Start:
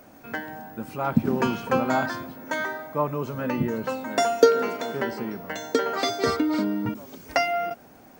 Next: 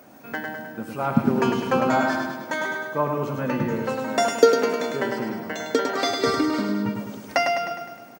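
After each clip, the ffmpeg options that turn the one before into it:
ffmpeg -i in.wav -filter_complex "[0:a]highpass=110,asplit=2[link_01][link_02];[link_02]aecho=0:1:103|206|309|412|515|618|721:0.562|0.315|0.176|0.0988|0.0553|0.031|0.0173[link_03];[link_01][link_03]amix=inputs=2:normalize=0,volume=1dB" out.wav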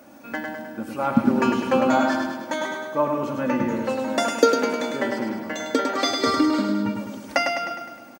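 ffmpeg -i in.wav -af "aecho=1:1:3.5:0.53" out.wav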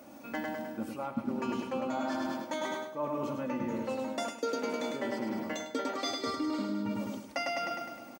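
ffmpeg -i in.wav -af "equalizer=frequency=1600:width=4.3:gain=-6.5,areverse,acompressor=threshold=-28dB:ratio=6,areverse,volume=-3dB" out.wav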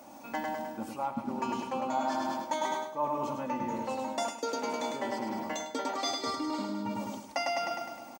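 ffmpeg -i in.wav -af "firequalizer=gain_entry='entry(510,0);entry(880,11);entry(1300,1);entry(6900,7);entry(11000,3)':delay=0.05:min_phase=1,volume=-2dB" out.wav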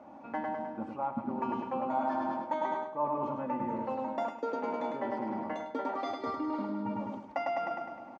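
ffmpeg -i in.wav -af "lowpass=1600" out.wav

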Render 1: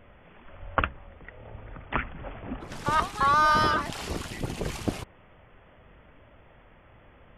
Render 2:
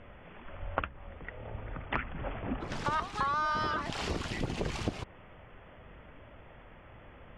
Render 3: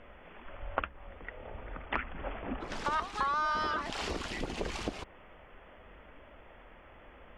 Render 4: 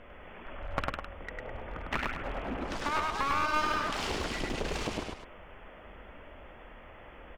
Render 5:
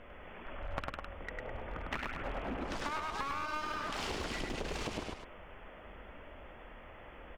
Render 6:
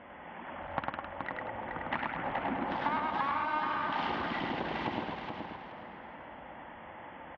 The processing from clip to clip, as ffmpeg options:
ffmpeg -i in.wav -af "lowpass=5900,acompressor=threshold=-31dB:ratio=6,volume=2dB" out.wav
ffmpeg -i in.wav -af "equalizer=frequency=120:width=1.3:gain=-12.5" out.wav
ffmpeg -i in.wav -af "aecho=1:1:102|207:0.794|0.316,aeval=exprs='clip(val(0),-1,0.0168)':channel_layout=same,volume=2dB" out.wav
ffmpeg -i in.wav -af "acompressor=threshold=-32dB:ratio=6,volume=-1.5dB" out.wav
ffmpeg -i in.wav -af "highpass=150,equalizer=frequency=430:width_type=q:width=4:gain=-10,equalizer=frequency=610:width_type=q:width=4:gain=-3,equalizer=frequency=860:width_type=q:width=4:gain=6,equalizer=frequency=1300:width_type=q:width=4:gain=-5,equalizer=frequency=2500:width_type=q:width=4:gain=-7,lowpass=frequency=3000:width=0.5412,lowpass=frequency=3000:width=1.3066,aecho=1:1:425|850|1275|1700:0.531|0.143|0.0387|0.0104,volume=6dB" out.wav

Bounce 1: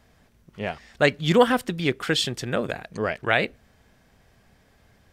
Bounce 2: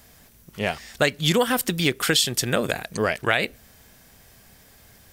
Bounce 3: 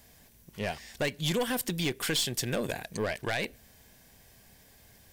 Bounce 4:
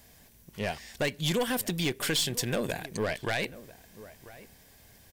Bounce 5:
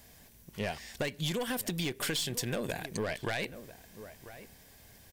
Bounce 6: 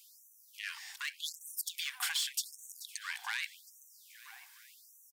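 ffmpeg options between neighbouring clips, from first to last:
ffmpeg -i in.wav -af "aemphasis=mode=production:type=75fm,acompressor=threshold=-21dB:ratio=6,volume=4.5dB" out.wav
ffmpeg -i in.wav -af "aeval=exprs='(tanh(7.94*val(0)+0.2)-tanh(0.2))/7.94':channel_layout=same,equalizer=frequency=1300:width=7.2:gain=-10,volume=-5dB" out.wav
ffmpeg -i in.wav -filter_complex "[0:a]asplit=2[link_01][link_02];[link_02]adelay=991.3,volume=-17dB,highshelf=frequency=4000:gain=-22.3[link_03];[link_01][link_03]amix=inputs=2:normalize=0,volume=1dB" out.wav
ffmpeg -i in.wav -af "acompressor=threshold=-30dB:ratio=6" out.wav
ffmpeg -i in.wav -af "aecho=1:1:431|862|1293|1724|2155:0.178|0.096|0.0519|0.028|0.0151,afftfilt=real='re*gte(b*sr/1024,710*pow(5900/710,0.5+0.5*sin(2*PI*0.85*pts/sr)))':imag='im*gte(b*sr/1024,710*pow(5900/710,0.5+0.5*sin(2*PI*0.85*pts/sr)))':win_size=1024:overlap=0.75" out.wav

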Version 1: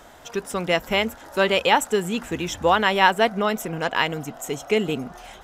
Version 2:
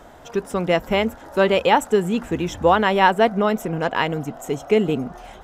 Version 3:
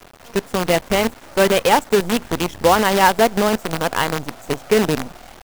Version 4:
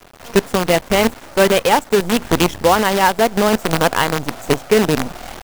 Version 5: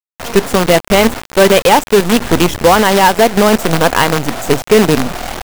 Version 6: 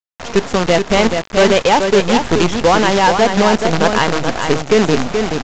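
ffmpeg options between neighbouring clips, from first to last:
ffmpeg -i in.wav -af "tiltshelf=frequency=1400:gain=5" out.wav
ffmpeg -i in.wav -af "highshelf=frequency=6800:gain=-9.5,acrusher=bits=4:dc=4:mix=0:aa=0.000001,volume=1.5dB" out.wav
ffmpeg -i in.wav -af "dynaudnorm=framelen=120:gausssize=3:maxgain=10.5dB,volume=-1dB" out.wav
ffmpeg -i in.wav -af "acrusher=bits=4:mix=0:aa=0.000001,asoftclip=type=tanh:threshold=-9dB,volume=8dB" out.wav
ffmpeg -i in.wav -filter_complex "[0:a]asplit=2[link_01][link_02];[link_02]aecho=0:1:428:0.501[link_03];[link_01][link_03]amix=inputs=2:normalize=0,aresample=16000,aresample=44100,volume=-3.5dB" out.wav

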